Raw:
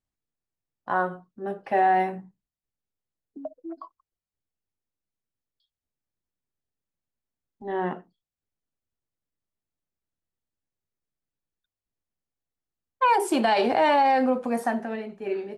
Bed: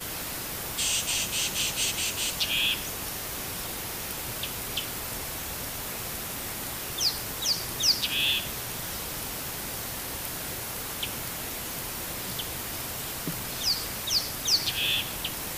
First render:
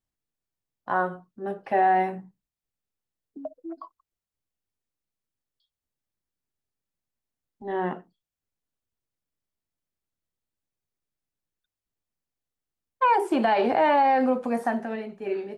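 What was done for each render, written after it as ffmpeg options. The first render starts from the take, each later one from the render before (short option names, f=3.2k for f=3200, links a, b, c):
-filter_complex "[0:a]acrossover=split=2700[a][b];[b]acompressor=threshold=-48dB:ratio=4:attack=1:release=60[c];[a][c]amix=inputs=2:normalize=0"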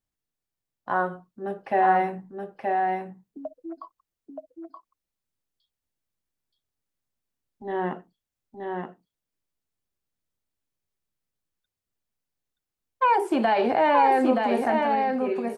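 -af "aecho=1:1:925:0.631"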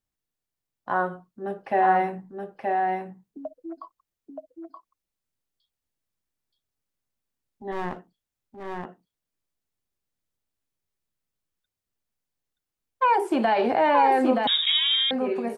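-filter_complex "[0:a]asplit=3[a][b][c];[a]afade=t=out:st=7.71:d=0.02[d];[b]aeval=exprs='clip(val(0),-1,0.00944)':c=same,afade=t=in:st=7.71:d=0.02,afade=t=out:st=8.84:d=0.02[e];[c]afade=t=in:st=8.84:d=0.02[f];[d][e][f]amix=inputs=3:normalize=0,asettb=1/sr,asplit=3[g][h][i];[g]atrim=end=14.474[j];[h]atrim=start=14.47:end=15.11,asetpts=PTS-STARTPTS,afade=t=in:d=0.004:c=qsin,afade=t=out:st=0.636:d=0.004:c=qsin,lowpass=f=3.4k:t=q:w=0.5098,lowpass=f=3.4k:t=q:w=0.6013,lowpass=f=3.4k:t=q:w=0.9,lowpass=f=3.4k:t=q:w=2.563,afreqshift=-4000[k];[i]atrim=start=15.106[l];[j][k]acrossfade=d=0.004:c1=hsin:c2=qsin[m];[m][l]acrossfade=d=0.004:c1=qsin:c2=hsin"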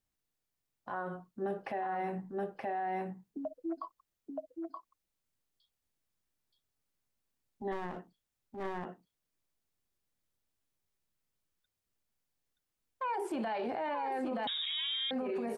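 -af "acompressor=threshold=-28dB:ratio=6,alimiter=level_in=5dB:limit=-24dB:level=0:latency=1:release=17,volume=-5dB"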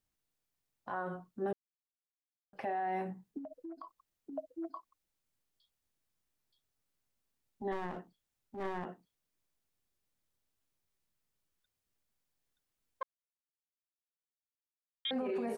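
-filter_complex "[0:a]asettb=1/sr,asplit=3[a][b][c];[a]atrim=end=3.384[d];[b]atrim=start=3.38:end=4.33,asetpts=PTS-STARTPTS,afade=t=in:d=0.004:c=qsin,afade=t=out:st=0.946:d=0.004:c=qsin,acompressor=threshold=-42dB:ratio=12:attack=3.2:release=140:knee=1:detection=peak[e];[c]atrim=start=4.326[f];[d][e]acrossfade=d=0.004:c1=hsin:c2=qsin[g];[g][f]acrossfade=d=0.004:c1=qsin:c2=hsin,asplit=5[h][i][j][k][l];[h]atrim=end=1.53,asetpts=PTS-STARTPTS,afade=t=out:st=1.526:d=0.004:c=hsin[m];[i]atrim=start=1.53:end=2.53,asetpts=PTS-STARTPTS,volume=0[n];[j]atrim=start=2.53:end=13.03,asetpts=PTS-STARTPTS,afade=t=in:d=0.004:c=hsin,afade=t=out:st=10.496:d=0.004:c=hsin[o];[k]atrim=start=13.03:end=15.05,asetpts=PTS-STARTPTS,volume=0[p];[l]atrim=start=15.05,asetpts=PTS-STARTPTS,afade=t=in:d=0.004:c=hsin[q];[m][n][o][p][q]concat=n=5:v=0:a=1"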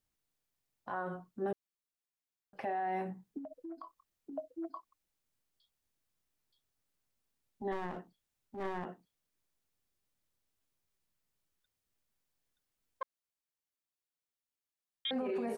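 -filter_complex "[0:a]asettb=1/sr,asplit=3[a][b][c];[a]atrim=end=3.684[d];[b]atrim=start=3.68:end=4.51,asetpts=PTS-STARTPTS,afade=t=in:d=0.004:c=qsin,afade=t=out:st=0.826:d=0.004:c=qsin,asplit=2[e][f];[f]adelay=24,volume=-13dB[g];[e][g]amix=inputs=2:normalize=0,atrim=end_sample=36603[h];[c]atrim=start=4.506[i];[d][h]acrossfade=d=0.004:c1=hsin:c2=qsin[j];[j][i]acrossfade=d=0.004:c1=qsin:c2=hsin"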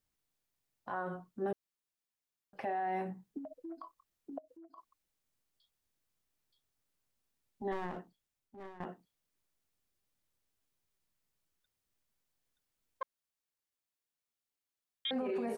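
-filter_complex "[0:a]asettb=1/sr,asplit=3[a][b][c];[a]atrim=end=4.384[d];[b]atrim=start=4.38:end=4.78,asetpts=PTS-STARTPTS,afade=t=in:d=0.004:c=qsin,afade=t=out:st=0.396:d=0.004:c=qsin,acompressor=threshold=-56dB:ratio=4:attack=3.2:release=140:knee=1:detection=peak[e];[c]atrim=start=4.776[f];[d][e]acrossfade=d=0.004:c1=hsin:c2=qsin[g];[g][f]acrossfade=d=0.004:c1=qsin:c2=hsin,asplit=2[h][i];[h]atrim=end=8.8,asetpts=PTS-STARTPTS,afade=t=out:st=8:d=0.8:silence=0.141254[j];[i]atrim=start=8.8,asetpts=PTS-STARTPTS,afade=t=in:d=0.004:c=hsin:silence=0.141254[k];[j][k]concat=n=2:v=0:a=1"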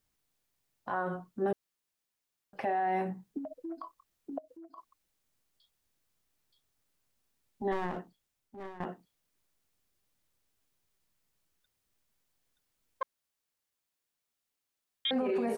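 -af "volume=5dB"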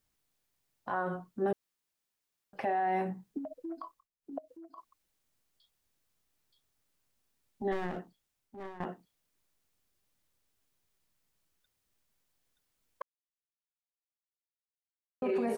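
-filter_complex "[0:a]asettb=1/sr,asplit=3[a][b][c];[a]atrim=end=7.624[d];[b]atrim=start=7.62:end=8.02,asetpts=PTS-STARTPTS,afade=t=in:d=0.004:c=qsin,afade=t=out:st=0.396:d=0.004:c=qsin,equalizer=f=1k:t=o:w=0.32:g=-10.5[e];[c]atrim=start=8.016[f];[d][e]acrossfade=d=0.004:c1=hsin:c2=qsin[g];[g][f]acrossfade=d=0.004:c1=qsin:c2=hsin,asplit=5[h][i][j][k][l];[h]atrim=end=4.08,asetpts=PTS-STARTPTS,afade=t=out:st=3.84:d=0.24:c=qsin:silence=0.0891251[m];[i]atrim=start=4.08:end=4.21,asetpts=PTS-STARTPTS,volume=-21dB[n];[j]atrim=start=4.21:end=13.02,asetpts=PTS-STARTPTS,afade=t=in:d=0.24:c=qsin:silence=0.0891251,afade=t=out:st=8.806:d=0.004:c=hsin[o];[k]atrim=start=13.02:end=15.22,asetpts=PTS-STARTPTS,volume=0[p];[l]atrim=start=15.22,asetpts=PTS-STARTPTS,afade=t=in:d=0.004:c=hsin[q];[m][n][o][p][q]concat=n=5:v=0:a=1"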